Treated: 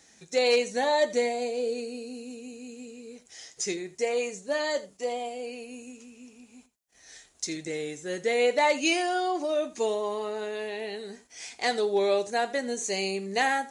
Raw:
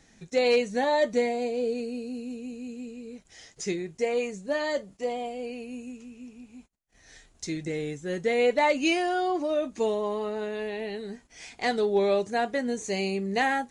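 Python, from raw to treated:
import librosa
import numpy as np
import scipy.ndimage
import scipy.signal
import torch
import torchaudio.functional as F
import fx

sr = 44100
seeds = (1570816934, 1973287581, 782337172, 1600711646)

y = scipy.signal.sosfilt(scipy.signal.butter(2, 44.0, 'highpass', fs=sr, output='sos'), x)
y = fx.bass_treble(y, sr, bass_db=-10, treble_db=7)
y = y + 10.0 ** (-17.5 / 20.0) * np.pad(y, (int(83 * sr / 1000.0), 0))[:len(y)]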